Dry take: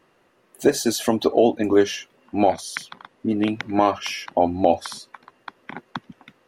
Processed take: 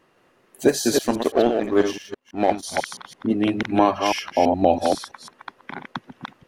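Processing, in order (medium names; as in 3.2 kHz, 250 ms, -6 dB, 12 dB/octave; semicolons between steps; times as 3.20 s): chunks repeated in reverse 165 ms, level -3.5 dB; 0.98–2.63 s: power-law waveshaper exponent 1.4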